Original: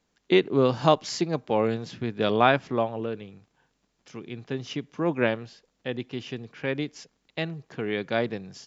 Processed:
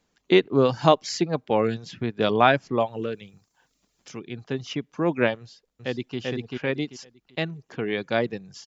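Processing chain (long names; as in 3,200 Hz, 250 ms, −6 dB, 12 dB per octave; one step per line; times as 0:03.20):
reverb reduction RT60 0.56 s
0:02.80–0:04.19: high-shelf EQ 5,200 Hz +10.5 dB
0:05.40–0:06.18: delay throw 390 ms, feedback 25%, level −1.5 dB
level +2.5 dB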